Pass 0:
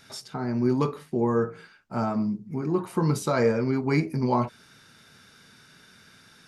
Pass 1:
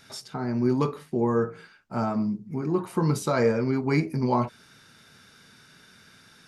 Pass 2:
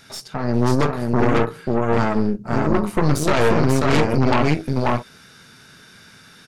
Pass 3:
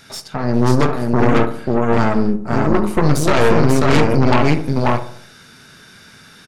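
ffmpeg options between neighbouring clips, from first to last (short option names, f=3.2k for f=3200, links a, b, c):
-af anull
-af "aecho=1:1:539:0.708,aeval=exprs='0.355*(cos(1*acos(clip(val(0)/0.355,-1,1)))-cos(1*PI/2))+0.0631*(cos(5*acos(clip(val(0)/0.355,-1,1)))-cos(5*PI/2))+0.112*(cos(8*acos(clip(val(0)/0.355,-1,1)))-cos(8*PI/2))':c=same"
-filter_complex "[0:a]asplit=2[a][b];[b]adelay=72,lowpass=f=1.4k:p=1,volume=-11dB,asplit=2[c][d];[d]adelay=72,lowpass=f=1.4k:p=1,volume=0.51,asplit=2[e][f];[f]adelay=72,lowpass=f=1.4k:p=1,volume=0.51,asplit=2[g][h];[h]adelay=72,lowpass=f=1.4k:p=1,volume=0.51,asplit=2[i][j];[j]adelay=72,lowpass=f=1.4k:p=1,volume=0.51[k];[a][c][e][g][i][k]amix=inputs=6:normalize=0,volume=3dB"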